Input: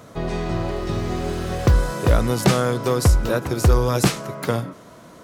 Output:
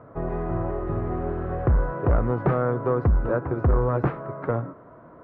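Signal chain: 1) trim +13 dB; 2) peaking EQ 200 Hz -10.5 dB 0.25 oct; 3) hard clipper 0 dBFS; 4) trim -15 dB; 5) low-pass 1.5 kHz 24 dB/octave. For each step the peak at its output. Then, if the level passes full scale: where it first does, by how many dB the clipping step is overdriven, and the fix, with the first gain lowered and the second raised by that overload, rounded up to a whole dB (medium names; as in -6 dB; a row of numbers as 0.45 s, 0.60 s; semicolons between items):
+7.0 dBFS, +7.0 dBFS, 0.0 dBFS, -15.0 dBFS, -13.5 dBFS; step 1, 7.0 dB; step 1 +6 dB, step 4 -8 dB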